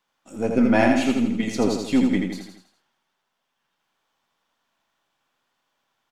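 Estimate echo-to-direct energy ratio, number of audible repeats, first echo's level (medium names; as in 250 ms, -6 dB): -3.5 dB, 5, -4.5 dB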